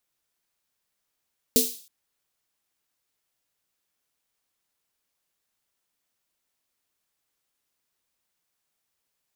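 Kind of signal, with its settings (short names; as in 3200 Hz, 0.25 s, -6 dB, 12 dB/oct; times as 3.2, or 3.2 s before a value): snare drum length 0.32 s, tones 250 Hz, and 450 Hz, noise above 3500 Hz, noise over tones 1 dB, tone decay 0.25 s, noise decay 0.47 s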